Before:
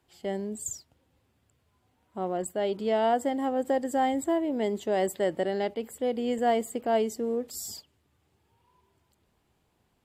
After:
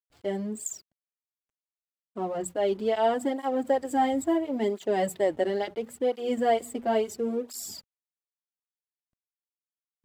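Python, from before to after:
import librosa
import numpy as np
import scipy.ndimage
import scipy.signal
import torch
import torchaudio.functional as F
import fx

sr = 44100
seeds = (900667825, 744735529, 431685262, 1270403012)

y = fx.hum_notches(x, sr, base_hz=60, count=4)
y = fx.backlash(y, sr, play_db=-47.0)
y = fx.flanger_cancel(y, sr, hz=0.73, depth_ms=6.8)
y = y * 10.0 ** (3.5 / 20.0)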